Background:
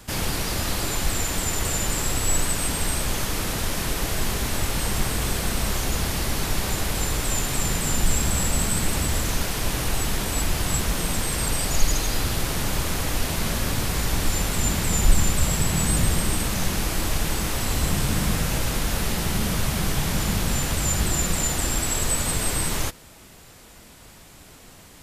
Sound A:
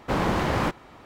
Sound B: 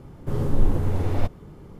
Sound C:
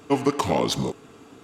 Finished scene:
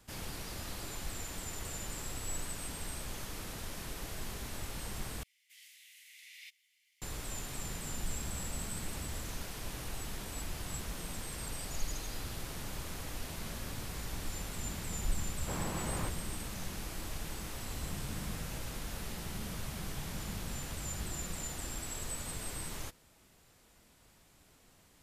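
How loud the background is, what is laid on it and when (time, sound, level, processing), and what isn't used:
background -16.5 dB
5.23 s: replace with B -4 dB + Chebyshev high-pass 2 kHz, order 6
15.39 s: add A -16 dB
not used: C

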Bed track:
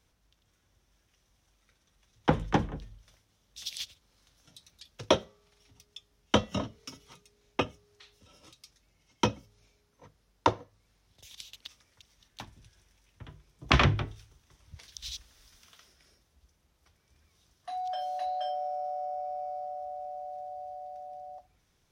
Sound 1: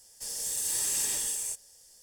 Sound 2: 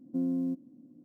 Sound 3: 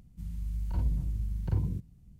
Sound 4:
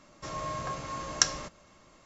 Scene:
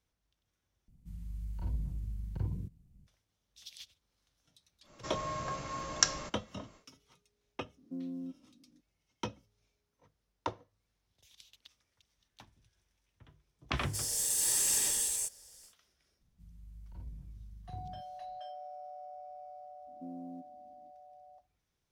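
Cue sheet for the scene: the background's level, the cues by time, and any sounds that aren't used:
bed track -12 dB
0.88 s: replace with 3 -6.5 dB
4.81 s: add 4 -2.5 dB, fades 0.10 s
7.77 s: add 2 -10 dB
13.73 s: add 1 -0.5 dB, fades 0.10 s + gain riding within 3 dB 2 s
16.21 s: add 3 -17 dB
19.87 s: add 2 -15 dB

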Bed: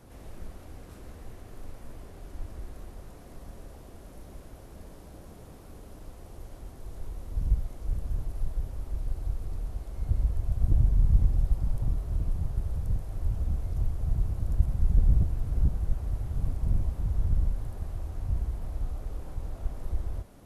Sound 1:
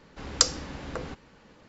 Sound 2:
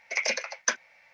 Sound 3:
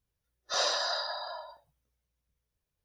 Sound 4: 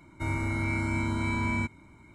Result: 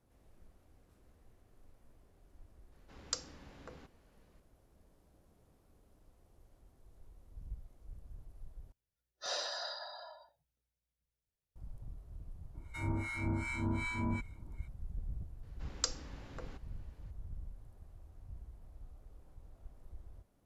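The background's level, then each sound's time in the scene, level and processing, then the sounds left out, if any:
bed -20 dB
2.72 s: add 1 -16.5 dB
8.72 s: replace with 3 -9 dB + peaking EQ 1.1 kHz -8.5 dB 0.22 oct
12.54 s: add 4 -3 dB + harmonic tremolo 2.6 Hz, depth 100%, crossover 1.1 kHz
15.43 s: add 1 -13.5 dB
not used: 2

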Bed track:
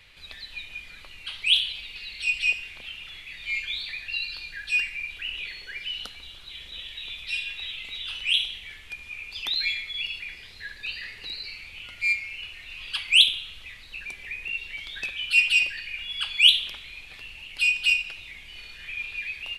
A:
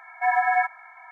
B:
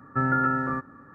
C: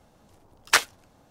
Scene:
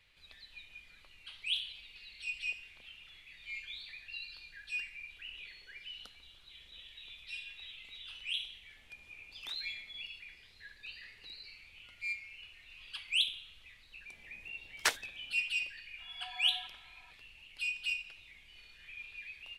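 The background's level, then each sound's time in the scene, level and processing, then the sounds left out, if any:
bed track -14 dB
8.76 s: add C -14 dB + compression 10:1, threshold -37 dBFS
14.12 s: add C -10 dB + peaking EQ 1.2 kHz -5.5 dB 0.35 oct
16.00 s: add A -16 dB + compression, threshold -31 dBFS
not used: B

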